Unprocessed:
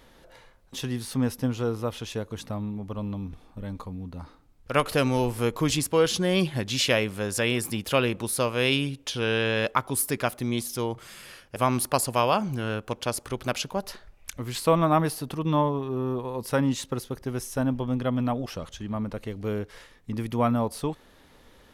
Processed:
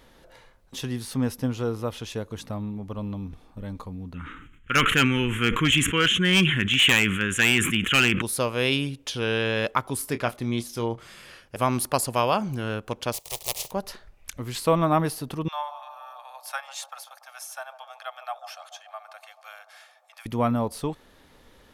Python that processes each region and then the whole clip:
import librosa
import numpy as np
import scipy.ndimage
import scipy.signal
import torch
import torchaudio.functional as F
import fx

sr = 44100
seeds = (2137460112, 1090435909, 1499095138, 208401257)

y = fx.chain(x, sr, fx.curve_eq(hz=(120.0, 190.0, 390.0, 700.0, 1400.0, 3200.0, 4700.0, 6800.0, 12000.0), db=(0, 4, -1, -19, 11, 13, -29, 0, -12)),
    fx.clip_hard(threshold_db=-13.0),
    fx.sustainer(db_per_s=46.0), at=(4.14, 8.22))
y = fx.chain(y, sr, fx.high_shelf(hz=8400.0, db=-11.0),
    fx.doubler(ms=26.0, db=-11.5), at=(9.97, 11.43))
y = fx.spec_flatten(y, sr, power=0.2, at=(13.12, 13.7), fade=0.02)
y = fx.fixed_phaser(y, sr, hz=620.0, stages=4, at=(13.12, 13.7), fade=0.02)
y = fx.chain(y, sr, fx.steep_highpass(hz=670.0, slope=72),
    fx.notch_comb(f0_hz=970.0),
    fx.echo_bbd(ms=144, stages=1024, feedback_pct=76, wet_db=-11.5), at=(15.48, 20.26))